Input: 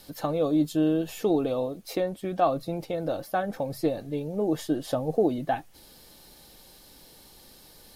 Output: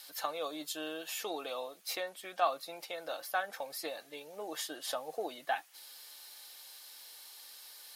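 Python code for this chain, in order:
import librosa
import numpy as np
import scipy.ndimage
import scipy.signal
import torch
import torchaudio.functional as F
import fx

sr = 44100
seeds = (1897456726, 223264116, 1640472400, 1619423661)

y = scipy.signal.sosfilt(scipy.signal.butter(2, 1200.0, 'highpass', fs=sr, output='sos'), x)
y = y * librosa.db_to_amplitude(2.0)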